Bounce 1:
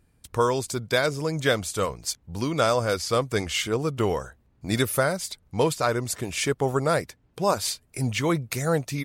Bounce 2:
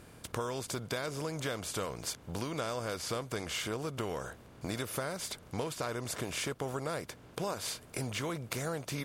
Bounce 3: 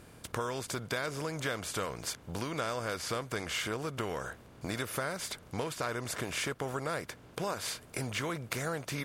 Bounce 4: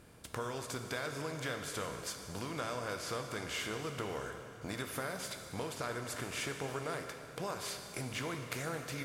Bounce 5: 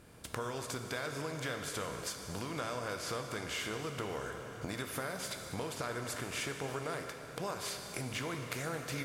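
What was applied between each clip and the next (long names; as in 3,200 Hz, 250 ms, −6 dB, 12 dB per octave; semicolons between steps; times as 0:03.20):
compressor on every frequency bin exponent 0.6; downward compressor, threshold −24 dBFS, peak gain reduction 10 dB; level −8.5 dB
dynamic equaliser 1,700 Hz, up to +5 dB, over −51 dBFS, Q 1.2
dense smooth reverb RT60 2.7 s, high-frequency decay 0.95×, DRR 4.5 dB; level −5 dB
camcorder AGC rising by 12 dB per second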